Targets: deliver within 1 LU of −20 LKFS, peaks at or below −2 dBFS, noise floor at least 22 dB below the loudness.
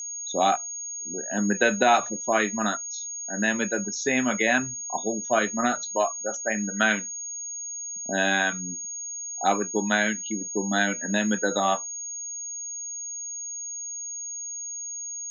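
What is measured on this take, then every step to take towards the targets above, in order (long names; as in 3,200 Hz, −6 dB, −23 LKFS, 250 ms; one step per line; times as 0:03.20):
interfering tone 6,600 Hz; level of the tone −32 dBFS; integrated loudness −26.0 LKFS; sample peak −5.5 dBFS; target loudness −20.0 LKFS
→ notch filter 6,600 Hz, Q 30
level +6 dB
brickwall limiter −2 dBFS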